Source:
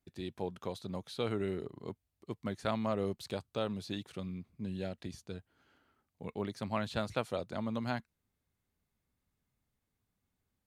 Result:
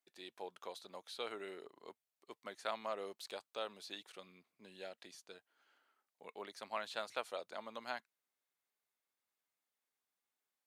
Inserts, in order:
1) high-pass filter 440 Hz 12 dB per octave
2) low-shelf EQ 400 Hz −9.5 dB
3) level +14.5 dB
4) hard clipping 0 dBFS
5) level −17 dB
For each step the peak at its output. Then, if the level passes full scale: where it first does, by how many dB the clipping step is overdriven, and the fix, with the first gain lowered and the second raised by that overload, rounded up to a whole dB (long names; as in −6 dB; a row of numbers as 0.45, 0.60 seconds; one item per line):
−18.5, −20.0, −5.5, −5.5, −22.5 dBFS
no step passes full scale